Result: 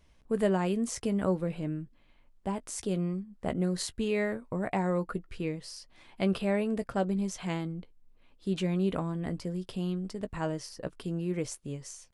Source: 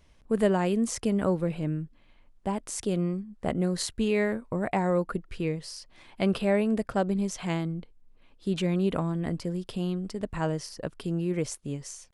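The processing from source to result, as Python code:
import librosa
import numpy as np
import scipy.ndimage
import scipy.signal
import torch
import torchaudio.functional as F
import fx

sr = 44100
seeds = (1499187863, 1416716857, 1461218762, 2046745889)

y = fx.doubler(x, sr, ms=16.0, db=-12.5)
y = y * 10.0 ** (-3.5 / 20.0)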